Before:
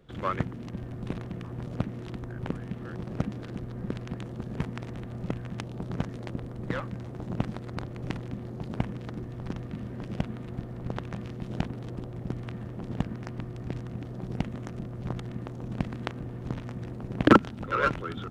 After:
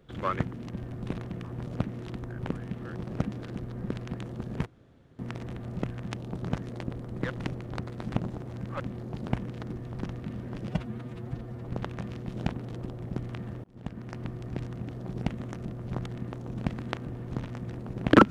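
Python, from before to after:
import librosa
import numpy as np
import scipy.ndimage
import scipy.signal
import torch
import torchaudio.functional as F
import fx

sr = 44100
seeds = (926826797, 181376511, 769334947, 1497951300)

y = fx.edit(x, sr, fx.insert_room_tone(at_s=4.66, length_s=0.53),
    fx.reverse_span(start_s=6.77, length_s=1.5),
    fx.stretch_span(start_s=10.16, length_s=0.66, factor=1.5),
    fx.fade_in_span(start_s=12.78, length_s=0.57), tone=tone)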